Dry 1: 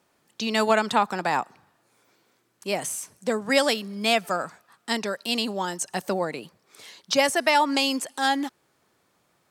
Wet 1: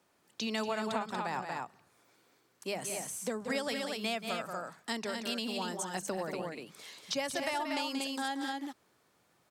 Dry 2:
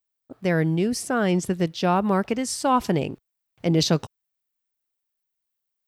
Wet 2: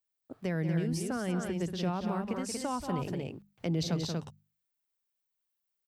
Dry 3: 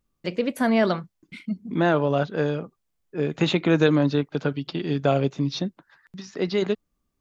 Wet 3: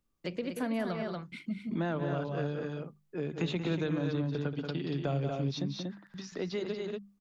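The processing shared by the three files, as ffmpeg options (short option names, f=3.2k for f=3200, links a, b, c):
-filter_complex "[0:a]bandreject=f=50:t=h:w=6,bandreject=f=100:t=h:w=6,bandreject=f=150:t=h:w=6,bandreject=f=200:t=h:w=6,aecho=1:1:180.8|236.2:0.355|0.501,acrossover=split=150[a][b];[b]acompressor=threshold=-31dB:ratio=3[c];[a][c]amix=inputs=2:normalize=0,volume=-4dB"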